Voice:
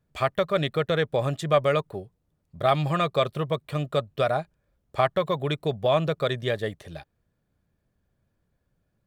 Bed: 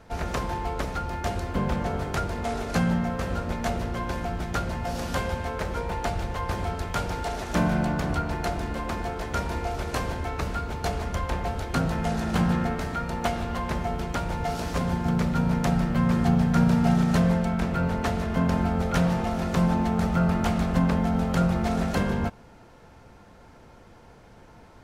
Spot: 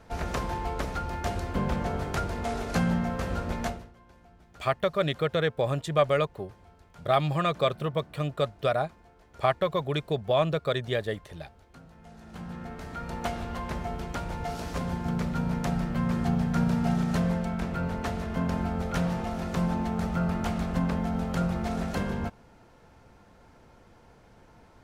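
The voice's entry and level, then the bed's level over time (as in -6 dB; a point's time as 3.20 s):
4.45 s, -2.0 dB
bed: 3.65 s -2 dB
3.95 s -26 dB
11.93 s -26 dB
13.12 s -5 dB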